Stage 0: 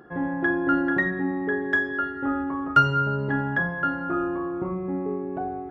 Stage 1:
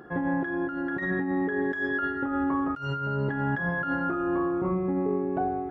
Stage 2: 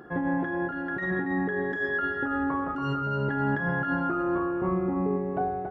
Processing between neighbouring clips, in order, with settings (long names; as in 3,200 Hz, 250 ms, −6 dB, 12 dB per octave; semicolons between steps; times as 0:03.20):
compressor whose output falls as the input rises −28 dBFS, ratio −1
slap from a distant wall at 48 metres, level −6 dB